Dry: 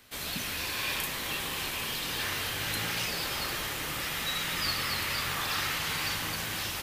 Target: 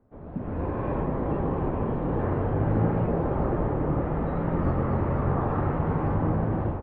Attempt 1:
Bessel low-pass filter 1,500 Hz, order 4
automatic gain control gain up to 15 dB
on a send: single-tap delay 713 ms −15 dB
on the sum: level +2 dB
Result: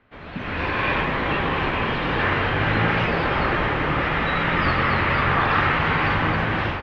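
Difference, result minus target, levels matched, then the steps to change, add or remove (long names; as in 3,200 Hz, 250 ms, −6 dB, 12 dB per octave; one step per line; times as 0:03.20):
2,000 Hz band +16.5 dB
change: Bessel low-pass filter 550 Hz, order 4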